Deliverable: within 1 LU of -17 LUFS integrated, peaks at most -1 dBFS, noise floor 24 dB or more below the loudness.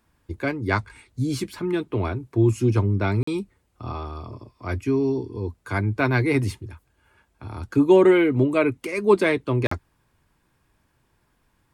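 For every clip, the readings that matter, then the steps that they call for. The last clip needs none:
dropouts 2; longest dropout 44 ms; loudness -22.5 LUFS; peak level -5.0 dBFS; loudness target -17.0 LUFS
-> interpolate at 3.23/9.67 s, 44 ms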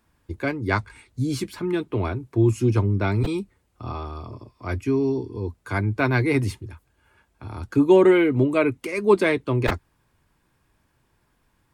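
dropouts 0; loudness -22.5 LUFS; peak level -5.0 dBFS; loudness target -17.0 LUFS
-> trim +5.5 dB; peak limiter -1 dBFS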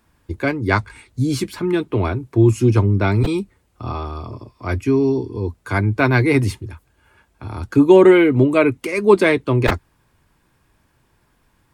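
loudness -17.0 LUFS; peak level -1.0 dBFS; noise floor -62 dBFS

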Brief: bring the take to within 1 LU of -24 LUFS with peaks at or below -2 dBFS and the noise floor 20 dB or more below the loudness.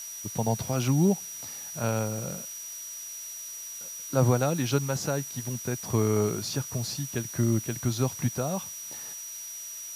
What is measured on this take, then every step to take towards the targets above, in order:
steady tone 5.8 kHz; tone level -38 dBFS; noise floor -40 dBFS; noise floor target -50 dBFS; loudness -29.5 LUFS; peak level -9.5 dBFS; loudness target -24.0 LUFS
-> band-stop 5.8 kHz, Q 30; noise reduction 10 dB, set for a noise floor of -40 dBFS; trim +5.5 dB

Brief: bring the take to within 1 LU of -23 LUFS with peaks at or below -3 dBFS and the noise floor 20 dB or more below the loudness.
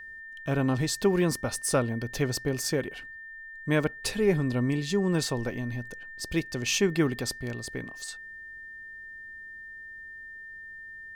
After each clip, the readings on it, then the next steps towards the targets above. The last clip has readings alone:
steady tone 1.8 kHz; tone level -41 dBFS; loudness -28.5 LUFS; peak level -11.5 dBFS; loudness target -23.0 LUFS
-> band-stop 1.8 kHz, Q 30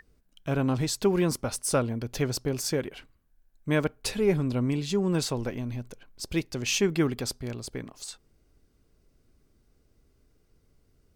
steady tone not found; loudness -28.5 LUFS; peak level -11.5 dBFS; loudness target -23.0 LUFS
-> trim +5.5 dB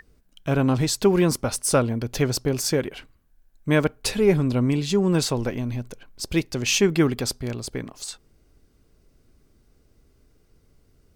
loudness -23.0 LUFS; peak level -6.0 dBFS; noise floor -62 dBFS

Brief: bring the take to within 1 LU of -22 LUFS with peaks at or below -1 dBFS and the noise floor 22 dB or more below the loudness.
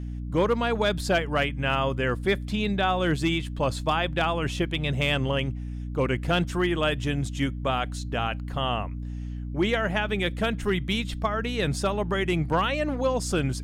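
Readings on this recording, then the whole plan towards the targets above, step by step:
hum 60 Hz; highest harmonic 300 Hz; hum level -31 dBFS; loudness -26.5 LUFS; peak level -12.5 dBFS; loudness target -22.0 LUFS
-> hum notches 60/120/180/240/300 Hz; trim +4.5 dB

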